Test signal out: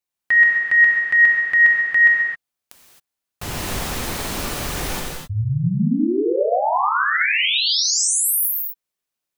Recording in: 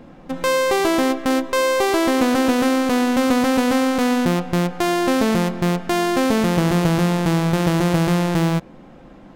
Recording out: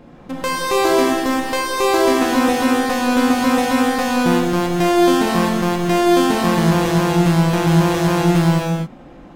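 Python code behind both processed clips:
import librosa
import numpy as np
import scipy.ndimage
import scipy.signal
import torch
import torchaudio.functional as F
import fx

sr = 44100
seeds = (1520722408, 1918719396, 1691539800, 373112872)

y = fx.rev_gated(x, sr, seeds[0], gate_ms=290, shape='flat', drr_db=-2.5)
y = F.gain(torch.from_numpy(y), -1.5).numpy()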